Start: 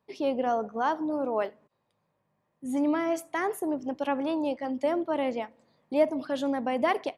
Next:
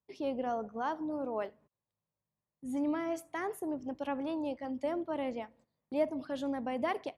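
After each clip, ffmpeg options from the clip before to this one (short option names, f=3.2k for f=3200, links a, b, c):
-af "equalizer=f=60:w=0.63:g=13.5,agate=range=-12dB:threshold=-54dB:ratio=16:detection=peak,volume=-8dB"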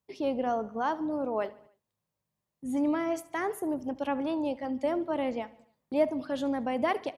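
-af "aecho=1:1:73|146|219|292:0.0891|0.0499|0.0279|0.0157,volume=5dB"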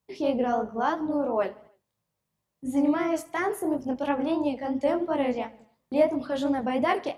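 -af "flanger=delay=17:depth=7.5:speed=2.9,volume=7dB"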